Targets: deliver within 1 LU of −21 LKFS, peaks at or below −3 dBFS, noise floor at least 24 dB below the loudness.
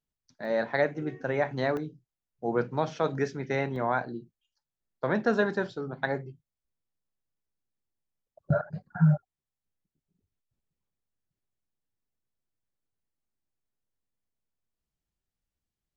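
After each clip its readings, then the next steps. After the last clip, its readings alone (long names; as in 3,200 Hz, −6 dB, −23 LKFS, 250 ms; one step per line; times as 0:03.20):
number of dropouts 3; longest dropout 1.1 ms; integrated loudness −29.5 LKFS; sample peak −12.0 dBFS; target loudness −21.0 LKFS
→ repair the gap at 0:00.45/0:01.77/0:03.76, 1.1 ms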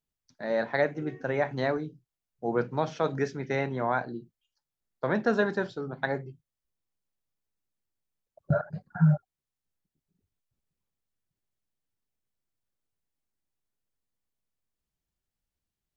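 number of dropouts 0; integrated loudness −29.5 LKFS; sample peak −12.0 dBFS; target loudness −21.0 LKFS
→ level +8.5 dB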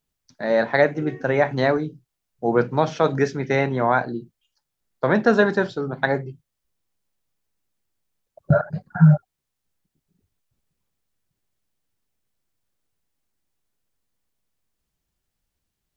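integrated loudness −21.0 LKFS; sample peak −3.5 dBFS; background noise floor −81 dBFS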